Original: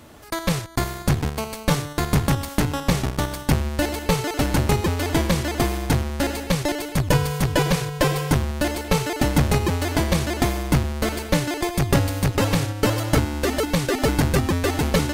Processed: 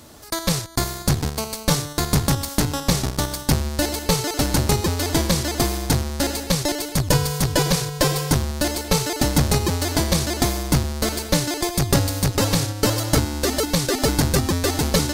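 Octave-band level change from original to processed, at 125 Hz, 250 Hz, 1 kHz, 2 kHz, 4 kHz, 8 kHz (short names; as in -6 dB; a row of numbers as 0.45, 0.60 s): 0.0, 0.0, -0.5, -1.0, +5.0, +7.0 dB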